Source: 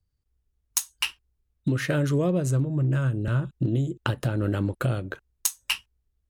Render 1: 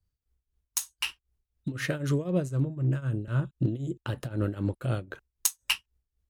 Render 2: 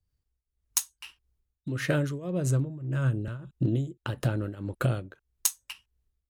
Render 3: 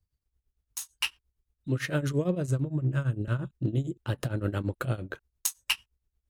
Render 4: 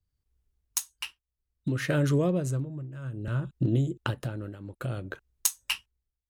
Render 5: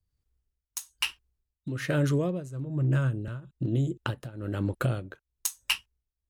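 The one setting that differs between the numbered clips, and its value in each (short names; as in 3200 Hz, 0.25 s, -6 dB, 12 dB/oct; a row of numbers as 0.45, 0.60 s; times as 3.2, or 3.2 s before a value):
tremolo, rate: 3.9, 1.7, 8.8, 0.6, 1.1 Hz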